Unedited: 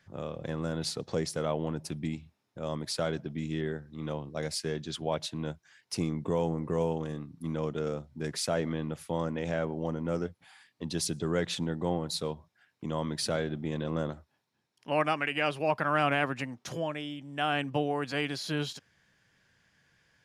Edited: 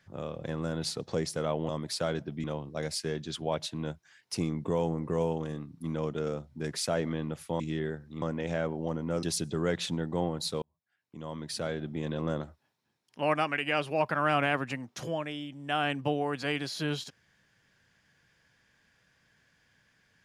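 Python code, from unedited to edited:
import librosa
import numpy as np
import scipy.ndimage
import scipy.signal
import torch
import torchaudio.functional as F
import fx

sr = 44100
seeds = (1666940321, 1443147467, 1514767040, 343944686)

y = fx.edit(x, sr, fx.cut(start_s=1.69, length_s=0.98),
    fx.move(start_s=3.42, length_s=0.62, to_s=9.2),
    fx.cut(start_s=10.21, length_s=0.71),
    fx.fade_in_span(start_s=12.31, length_s=1.5), tone=tone)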